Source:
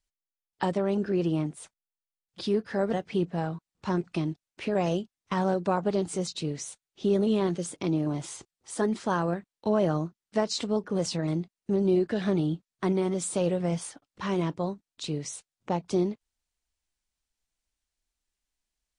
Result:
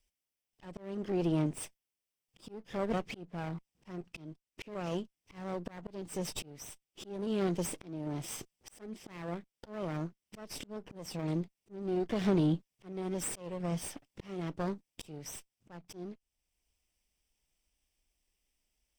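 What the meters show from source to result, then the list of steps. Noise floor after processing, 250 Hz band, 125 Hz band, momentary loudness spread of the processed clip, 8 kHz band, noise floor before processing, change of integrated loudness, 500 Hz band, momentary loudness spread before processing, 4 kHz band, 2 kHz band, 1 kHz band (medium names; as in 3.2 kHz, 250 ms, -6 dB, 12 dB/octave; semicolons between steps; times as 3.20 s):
under -85 dBFS, -8.0 dB, -7.0 dB, 17 LU, -5.5 dB, under -85 dBFS, -8.5 dB, -10.5 dB, 10 LU, -8.5 dB, -8.5 dB, -11.0 dB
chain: comb filter that takes the minimum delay 0.36 ms; in parallel at -0.5 dB: compression 6:1, threshold -37 dBFS, peak gain reduction 16 dB; on the sum: slow attack 778 ms; saturation -18.5 dBFS, distortion -22 dB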